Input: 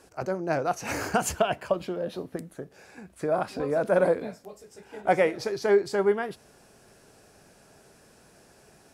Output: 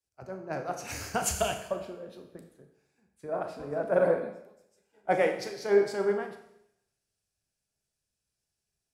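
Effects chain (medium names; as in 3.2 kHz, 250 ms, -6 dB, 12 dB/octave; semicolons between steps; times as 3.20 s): Schroeder reverb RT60 1.4 s, combs from 28 ms, DRR 4 dB; three bands expanded up and down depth 100%; trim -8 dB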